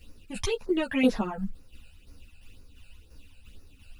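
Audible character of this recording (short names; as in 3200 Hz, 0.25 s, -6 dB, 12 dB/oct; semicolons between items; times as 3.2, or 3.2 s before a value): a quantiser's noise floor 12-bit, dither none; phasing stages 12, 2 Hz, lowest notch 330–3200 Hz; tremolo saw down 2.9 Hz, depth 55%; a shimmering, thickened sound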